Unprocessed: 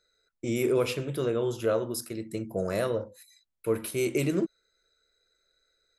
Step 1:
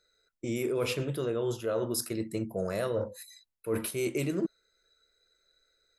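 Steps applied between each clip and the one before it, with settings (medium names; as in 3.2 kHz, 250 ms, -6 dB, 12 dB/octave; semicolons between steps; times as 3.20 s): reverse; compression 5:1, threshold -35 dBFS, peak gain reduction 12.5 dB; reverse; spectral noise reduction 6 dB; trim +6.5 dB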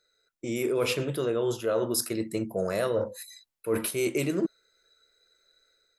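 bass shelf 140 Hz -8 dB; level rider gain up to 4.5 dB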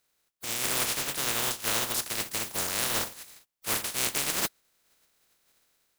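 spectral contrast reduction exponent 0.12; trim -1.5 dB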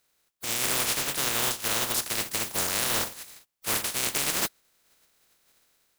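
peak limiter -18 dBFS, peak gain reduction 5.5 dB; trim +3 dB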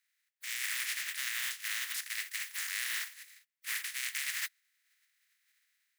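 ladder high-pass 1.7 kHz, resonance 65%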